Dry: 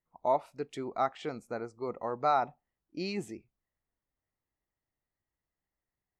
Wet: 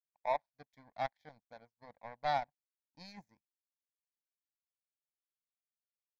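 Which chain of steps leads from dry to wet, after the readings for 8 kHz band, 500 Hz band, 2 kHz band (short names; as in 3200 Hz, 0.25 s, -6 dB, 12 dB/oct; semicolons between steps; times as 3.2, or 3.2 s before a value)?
under -10 dB, -9.0 dB, -2.5 dB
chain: power-law curve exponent 2; fixed phaser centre 1900 Hz, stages 8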